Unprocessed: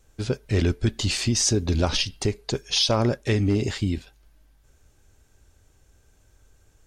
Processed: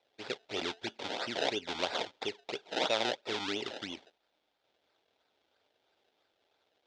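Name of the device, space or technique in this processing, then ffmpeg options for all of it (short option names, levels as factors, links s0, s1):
circuit-bent sampling toy: -af "acrusher=samples=27:mix=1:aa=0.000001:lfo=1:lforange=27:lforate=3,highpass=560,equalizer=f=1100:t=q:w=4:g=-9,equalizer=f=1800:t=q:w=4:g=-4,equalizer=f=3500:t=q:w=4:g=8,lowpass=f=5600:w=0.5412,lowpass=f=5600:w=1.3066,volume=0.596"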